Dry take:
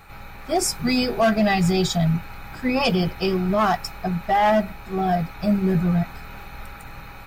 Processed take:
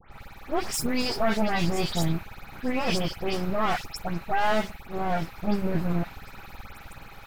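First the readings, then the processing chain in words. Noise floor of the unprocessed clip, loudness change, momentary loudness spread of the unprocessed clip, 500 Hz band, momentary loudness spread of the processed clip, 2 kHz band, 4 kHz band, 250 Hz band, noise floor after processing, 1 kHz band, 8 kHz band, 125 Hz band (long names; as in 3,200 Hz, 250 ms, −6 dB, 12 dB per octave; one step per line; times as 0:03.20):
−40 dBFS, −6.5 dB, 20 LU, −6.5 dB, 19 LU, −4.5 dB, −4.5 dB, −7.5 dB, −47 dBFS, −6.5 dB, −5.5 dB, −7.5 dB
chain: half-wave rectification
all-pass dispersion highs, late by 123 ms, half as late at 2,800 Hz
level −1.5 dB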